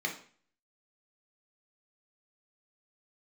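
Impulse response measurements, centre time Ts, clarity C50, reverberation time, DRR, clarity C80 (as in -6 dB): 18 ms, 9.0 dB, 0.45 s, 0.5 dB, 14.0 dB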